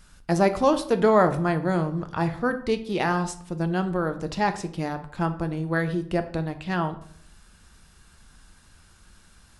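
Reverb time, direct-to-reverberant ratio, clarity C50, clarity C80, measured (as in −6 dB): 0.55 s, 8.0 dB, 13.0 dB, 17.0 dB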